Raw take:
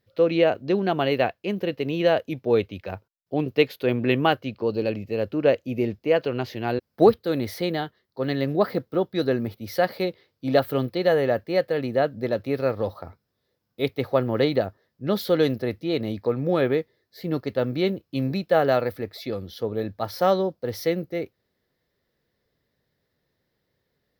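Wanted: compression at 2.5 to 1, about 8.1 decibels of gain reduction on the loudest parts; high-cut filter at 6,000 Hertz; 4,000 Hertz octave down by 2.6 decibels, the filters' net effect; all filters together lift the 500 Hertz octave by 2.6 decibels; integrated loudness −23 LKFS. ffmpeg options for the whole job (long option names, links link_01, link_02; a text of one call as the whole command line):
ffmpeg -i in.wav -af "lowpass=6000,equalizer=frequency=500:width_type=o:gain=3,equalizer=frequency=4000:width_type=o:gain=-3,acompressor=threshold=-21dB:ratio=2.5,volume=3.5dB" out.wav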